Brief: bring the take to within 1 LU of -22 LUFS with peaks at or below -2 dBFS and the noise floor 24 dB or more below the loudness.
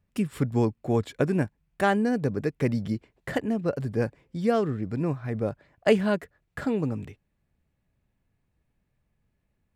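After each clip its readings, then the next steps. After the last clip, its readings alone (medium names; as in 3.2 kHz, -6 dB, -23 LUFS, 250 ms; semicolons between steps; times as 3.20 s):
loudness -27.5 LUFS; peak level -8.0 dBFS; loudness target -22.0 LUFS
-> trim +5.5 dB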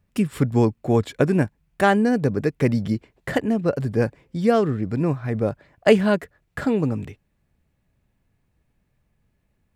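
loudness -22.0 LUFS; peak level -2.5 dBFS; noise floor -70 dBFS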